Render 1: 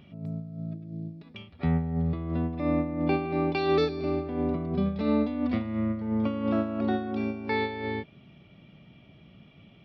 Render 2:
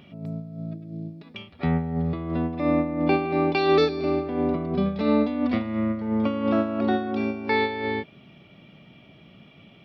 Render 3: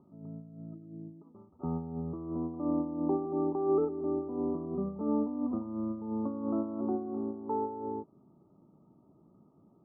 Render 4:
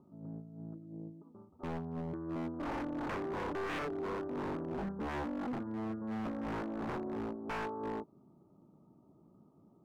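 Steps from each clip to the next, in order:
bass shelf 130 Hz -11 dB; trim +6 dB
rippled Chebyshev low-pass 1.3 kHz, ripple 9 dB; trim -5.5 dB
wavefolder -31.5 dBFS; loudspeaker Doppler distortion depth 0.48 ms; trim -1 dB

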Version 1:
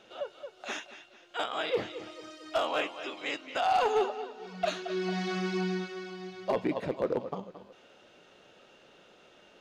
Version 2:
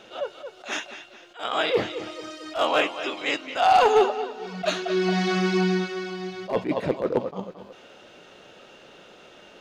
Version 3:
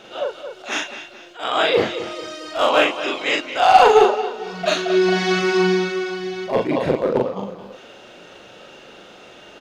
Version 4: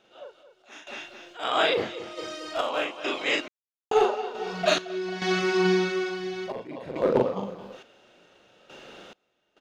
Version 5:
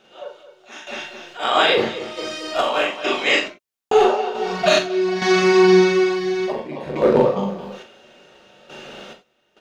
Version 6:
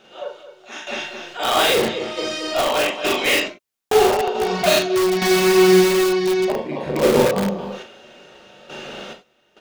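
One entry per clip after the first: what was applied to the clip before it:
attacks held to a fixed rise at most 190 dB/s; trim +9 dB
doubling 40 ms -2 dB; trim +4 dB
random-step tremolo 2.3 Hz, depth 100%; trim -2.5 dB
gated-style reverb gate 120 ms falling, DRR 2.5 dB; loudness maximiser +10.5 dB; trim -4 dB
dynamic bell 1.4 kHz, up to -4 dB, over -34 dBFS, Q 1.1; in parallel at -5 dB: integer overflow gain 16 dB

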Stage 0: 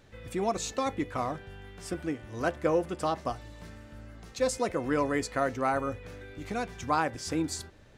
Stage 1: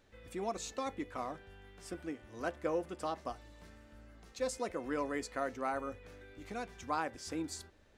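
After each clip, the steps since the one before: peaking EQ 130 Hz -11.5 dB 0.54 oct; trim -8 dB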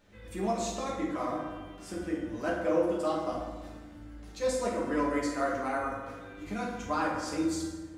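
reverberation RT60 1.3 s, pre-delay 5 ms, DRR -5 dB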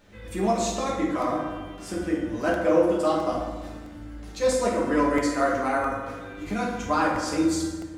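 crackling interface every 0.66 s, samples 64, repeat, from 0.56 s; trim +7 dB

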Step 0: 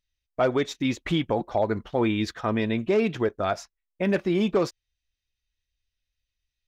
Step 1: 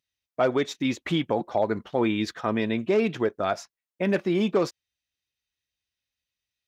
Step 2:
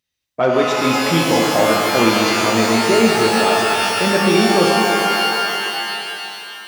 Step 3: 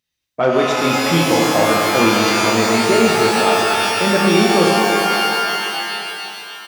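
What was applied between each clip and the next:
high-pass 130 Hz 12 dB/octave
pitch-shifted reverb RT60 3 s, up +12 st, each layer -2 dB, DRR -1.5 dB; trim +5 dB
loudspeakers at several distances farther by 10 m -9 dB, 33 m -12 dB

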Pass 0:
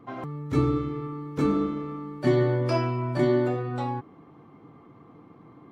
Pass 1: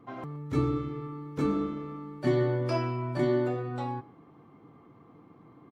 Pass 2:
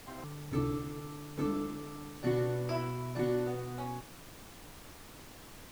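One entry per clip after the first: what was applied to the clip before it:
delay 124 ms -21 dB; trim -4 dB
added noise pink -46 dBFS; trim -5.5 dB

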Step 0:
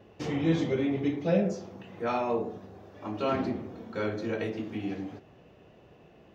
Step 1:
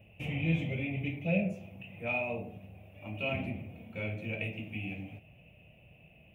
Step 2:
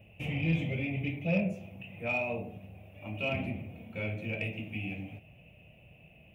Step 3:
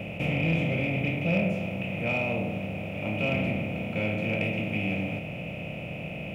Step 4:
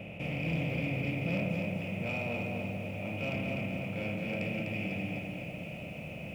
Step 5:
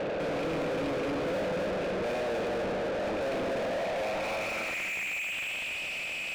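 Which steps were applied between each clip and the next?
FFT filter 100 Hz 0 dB, 160 Hz -2 dB, 400 Hz -19 dB, 610 Hz -6 dB, 1.1 kHz -20 dB, 1.7 kHz -18 dB, 2.5 kHz +9 dB, 4.5 kHz -27 dB, 6.6 kHz -19 dB, 9.9 kHz +3 dB; trim +2.5 dB
saturation -19 dBFS, distortion -25 dB; trim +1.5 dB
spectral levelling over time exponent 0.4
saturation -17 dBFS, distortion -25 dB; bit-crushed delay 250 ms, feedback 55%, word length 9-bit, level -4 dB; trim -7.5 dB
band-pass sweep 420 Hz -> 4.7 kHz, 3.48–5.81 s; overdrive pedal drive 39 dB, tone 2.4 kHz, clips at -30.5 dBFS; trim +5.5 dB

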